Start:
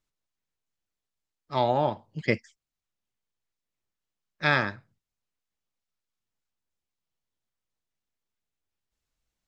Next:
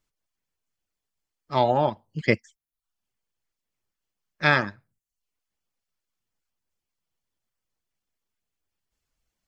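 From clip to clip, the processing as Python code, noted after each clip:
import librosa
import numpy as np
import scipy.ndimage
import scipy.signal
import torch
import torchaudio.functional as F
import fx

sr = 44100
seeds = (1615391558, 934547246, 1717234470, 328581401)

y = fx.dereverb_blind(x, sr, rt60_s=0.51)
y = fx.notch(y, sr, hz=3800.0, q=16.0)
y = y * 10.0 ** (4.0 / 20.0)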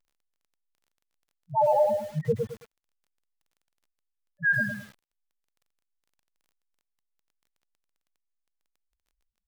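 y = fx.spec_topn(x, sr, count=1)
y = fx.dmg_crackle(y, sr, seeds[0], per_s=18.0, level_db=-61.0)
y = fx.echo_crushed(y, sr, ms=108, feedback_pct=35, bits=9, wet_db=-4)
y = y * 10.0 ** (7.5 / 20.0)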